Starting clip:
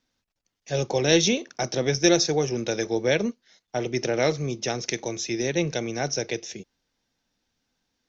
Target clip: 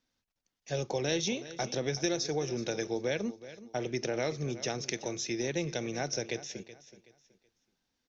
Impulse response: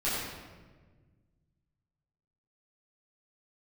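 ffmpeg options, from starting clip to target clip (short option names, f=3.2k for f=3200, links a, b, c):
-filter_complex "[0:a]acompressor=threshold=-24dB:ratio=3,asplit=2[a][b];[b]aecho=0:1:375|750|1125:0.168|0.0487|0.0141[c];[a][c]amix=inputs=2:normalize=0,volume=-5dB"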